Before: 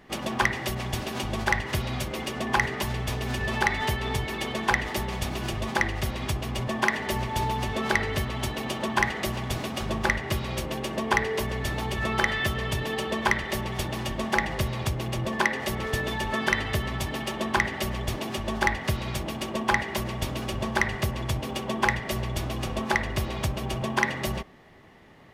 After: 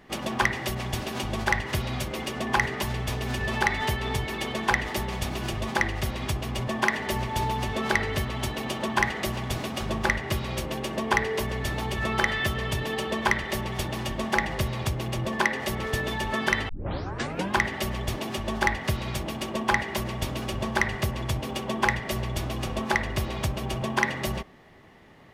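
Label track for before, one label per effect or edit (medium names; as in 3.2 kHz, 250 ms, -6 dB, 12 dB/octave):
16.690000	16.690000	tape start 0.87 s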